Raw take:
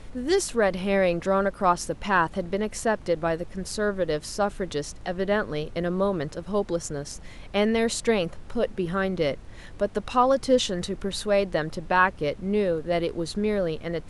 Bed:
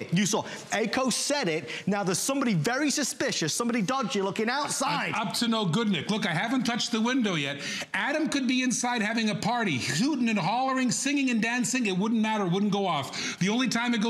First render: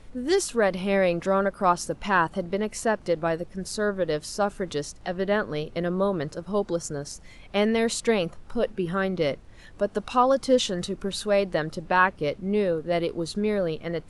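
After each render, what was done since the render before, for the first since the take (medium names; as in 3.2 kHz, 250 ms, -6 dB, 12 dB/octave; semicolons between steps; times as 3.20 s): noise print and reduce 6 dB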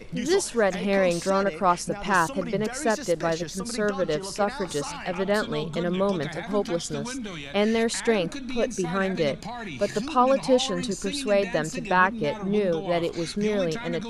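add bed -8.5 dB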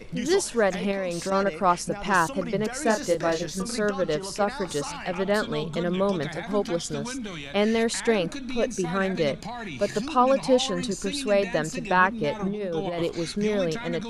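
0.91–1.32 s: compression, threshold -24 dBFS; 2.83–3.79 s: doubling 27 ms -6 dB; 12.39–13.03 s: compressor with a negative ratio -28 dBFS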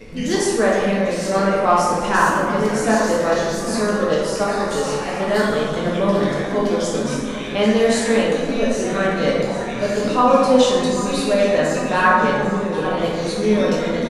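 feedback delay 795 ms, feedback 56%, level -14 dB; plate-style reverb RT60 1.7 s, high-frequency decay 0.5×, DRR -5.5 dB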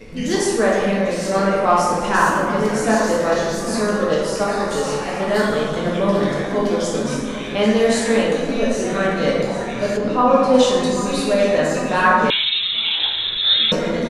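9.96–10.53 s: low-pass 1.4 kHz -> 3.3 kHz 6 dB/octave; 12.30–13.72 s: frequency inversion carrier 3.9 kHz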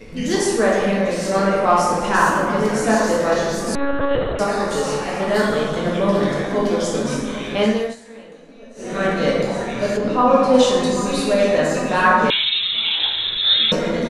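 3.75–4.39 s: monotone LPC vocoder at 8 kHz 280 Hz; 7.64–9.07 s: dip -22.5 dB, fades 0.32 s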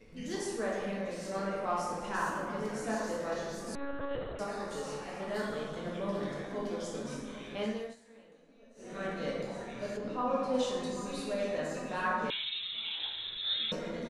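trim -17.5 dB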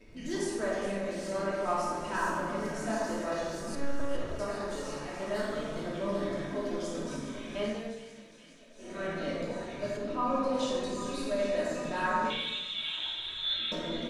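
feedback echo behind a high-pass 414 ms, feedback 73%, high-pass 2.3 kHz, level -11 dB; simulated room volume 3300 m³, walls furnished, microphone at 2.8 m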